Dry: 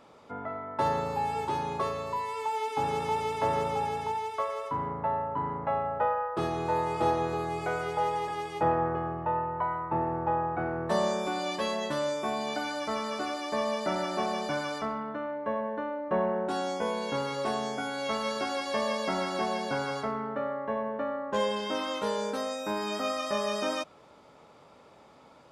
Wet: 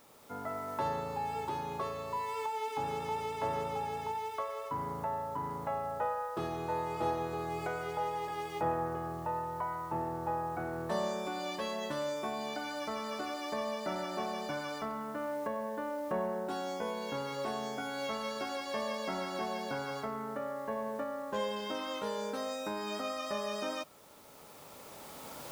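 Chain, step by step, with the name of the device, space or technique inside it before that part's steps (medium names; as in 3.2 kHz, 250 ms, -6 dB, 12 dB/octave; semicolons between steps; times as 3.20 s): cheap recorder with automatic gain (white noise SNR 27 dB; recorder AGC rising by 8.8 dB/s); trim -6.5 dB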